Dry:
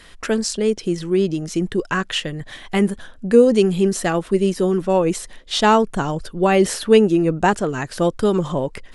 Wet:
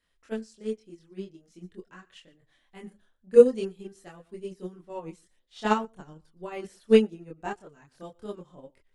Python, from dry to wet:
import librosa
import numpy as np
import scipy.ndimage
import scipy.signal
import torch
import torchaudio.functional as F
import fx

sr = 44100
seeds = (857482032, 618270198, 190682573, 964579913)

y = x + 10.0 ** (-19.0 / 20.0) * np.pad(x, (int(118 * sr / 1000.0), 0))[:len(x)]
y = fx.chorus_voices(y, sr, voices=2, hz=0.44, base_ms=25, depth_ms=2.8, mix_pct=50)
y = fx.upward_expand(y, sr, threshold_db=-26.0, expansion=2.5)